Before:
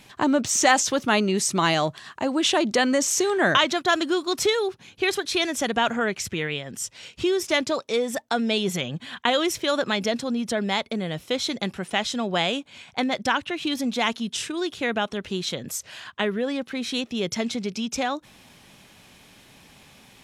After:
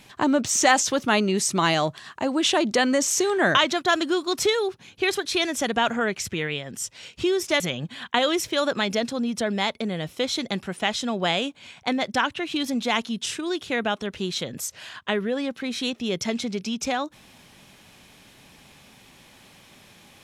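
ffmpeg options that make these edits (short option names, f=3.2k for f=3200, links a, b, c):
-filter_complex "[0:a]asplit=2[a][b];[a]atrim=end=7.602[c];[b]atrim=start=8.708[d];[c][d]acrossfade=d=0.004:c1=hsin:c2=hsin"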